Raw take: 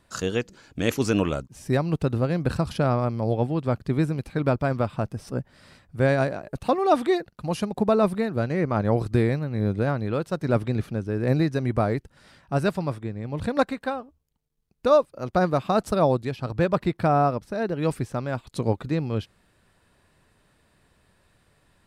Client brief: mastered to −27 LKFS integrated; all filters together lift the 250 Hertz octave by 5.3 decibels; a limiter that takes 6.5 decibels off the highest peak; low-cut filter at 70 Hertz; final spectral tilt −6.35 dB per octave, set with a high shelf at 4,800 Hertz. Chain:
high-pass filter 70 Hz
parametric band 250 Hz +7 dB
high-shelf EQ 4,800 Hz +7.5 dB
level −3 dB
brickwall limiter −14.5 dBFS

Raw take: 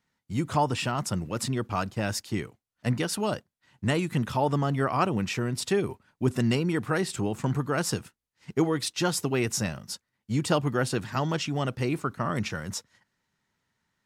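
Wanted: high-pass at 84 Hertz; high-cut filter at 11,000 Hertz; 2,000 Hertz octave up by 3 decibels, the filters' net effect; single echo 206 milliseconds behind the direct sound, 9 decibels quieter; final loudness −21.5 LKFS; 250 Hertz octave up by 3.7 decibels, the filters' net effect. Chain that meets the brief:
high-pass filter 84 Hz
low-pass filter 11,000 Hz
parametric band 250 Hz +5 dB
parametric band 2,000 Hz +4 dB
single-tap delay 206 ms −9 dB
level +4.5 dB

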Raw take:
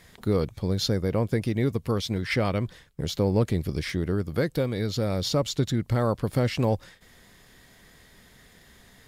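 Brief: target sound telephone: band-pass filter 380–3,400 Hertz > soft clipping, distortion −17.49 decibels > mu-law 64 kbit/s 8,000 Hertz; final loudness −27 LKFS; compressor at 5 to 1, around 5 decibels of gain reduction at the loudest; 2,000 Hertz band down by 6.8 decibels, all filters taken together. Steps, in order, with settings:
parametric band 2,000 Hz −7.5 dB
downward compressor 5 to 1, threshold −24 dBFS
band-pass filter 380–3,400 Hz
soft clipping −26 dBFS
level +11 dB
mu-law 64 kbit/s 8,000 Hz

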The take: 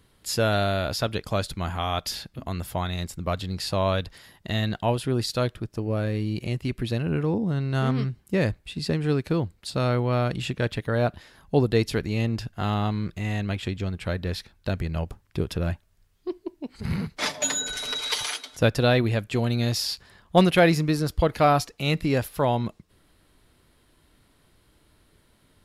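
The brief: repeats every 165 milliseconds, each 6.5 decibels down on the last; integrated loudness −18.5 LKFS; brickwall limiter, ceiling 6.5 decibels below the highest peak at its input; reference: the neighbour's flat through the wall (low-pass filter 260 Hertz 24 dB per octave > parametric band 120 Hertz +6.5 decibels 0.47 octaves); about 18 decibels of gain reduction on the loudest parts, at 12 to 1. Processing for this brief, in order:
downward compressor 12 to 1, threshold −31 dBFS
brickwall limiter −26.5 dBFS
low-pass filter 260 Hz 24 dB per octave
parametric band 120 Hz +6.5 dB 0.47 octaves
repeating echo 165 ms, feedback 47%, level −6.5 dB
level +18 dB

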